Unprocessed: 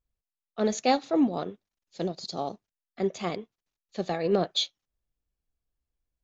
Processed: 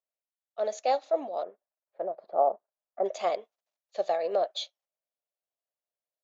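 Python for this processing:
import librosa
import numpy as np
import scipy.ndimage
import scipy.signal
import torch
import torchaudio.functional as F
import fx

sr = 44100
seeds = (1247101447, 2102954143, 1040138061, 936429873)

y = fx.lowpass(x, sr, hz=fx.line((1.42, 1900.0), (3.04, 1300.0)), slope=24, at=(1.42, 3.04), fade=0.02)
y = fx.rider(y, sr, range_db=5, speed_s=0.5)
y = fx.highpass_res(y, sr, hz=610.0, q=4.9)
y = y * 10.0 ** (-5.0 / 20.0)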